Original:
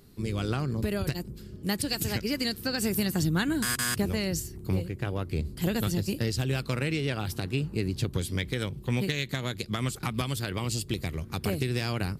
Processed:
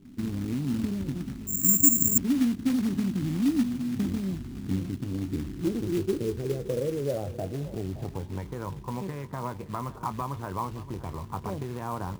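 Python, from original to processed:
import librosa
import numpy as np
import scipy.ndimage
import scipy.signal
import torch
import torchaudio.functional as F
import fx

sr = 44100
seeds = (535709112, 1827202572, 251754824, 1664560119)

p1 = scipy.signal.sosfilt(scipy.signal.butter(2, 4100.0, 'lowpass', fs=sr, output='sos'), x)
p2 = fx.over_compress(p1, sr, threshold_db=-35.0, ratio=-1.0)
p3 = p1 + (p2 * 10.0 ** (-2.0 / 20.0))
p4 = fx.filter_sweep_lowpass(p3, sr, from_hz=260.0, to_hz=990.0, start_s=5.11, end_s=8.58, q=7.5)
p5 = fx.quant_float(p4, sr, bits=2)
p6 = fx.doubler(p5, sr, ms=21.0, db=-12)
p7 = p6 + fx.echo_single(p6, sr, ms=571, db=-16.0, dry=0)
p8 = fx.resample_bad(p7, sr, factor=6, down='filtered', up='zero_stuff', at=(1.47, 2.18))
y = p8 * 10.0 ** (-8.5 / 20.0)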